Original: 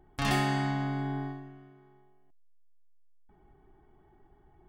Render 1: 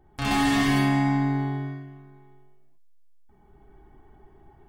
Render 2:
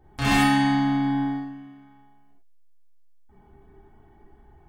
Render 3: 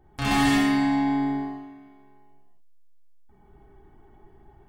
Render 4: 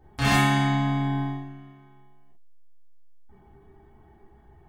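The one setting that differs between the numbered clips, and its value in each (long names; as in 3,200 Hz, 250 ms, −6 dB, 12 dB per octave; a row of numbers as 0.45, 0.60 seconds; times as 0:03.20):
reverb whose tail is shaped and stops, gate: 490, 130, 320, 80 milliseconds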